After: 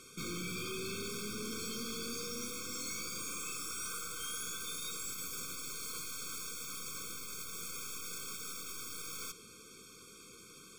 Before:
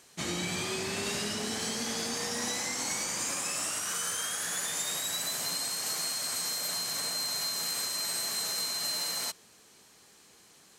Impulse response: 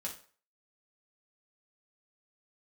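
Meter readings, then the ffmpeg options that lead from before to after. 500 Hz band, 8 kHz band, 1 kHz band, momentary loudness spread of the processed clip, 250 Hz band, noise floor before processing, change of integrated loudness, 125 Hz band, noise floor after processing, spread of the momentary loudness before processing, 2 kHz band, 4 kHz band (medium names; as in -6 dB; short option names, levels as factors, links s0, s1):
-7.0 dB, -9.0 dB, -9.0 dB, 10 LU, -5.5 dB, -59 dBFS, -9.0 dB, -5.5 dB, -55 dBFS, 2 LU, -8.5 dB, -12.0 dB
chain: -af "aeval=exprs='(tanh(178*val(0)+0.3)-tanh(0.3))/178':c=same,afftfilt=real='re*eq(mod(floor(b*sr/1024/530),2),0)':imag='im*eq(mod(floor(b*sr/1024/530),2),0)':win_size=1024:overlap=0.75,volume=2.37"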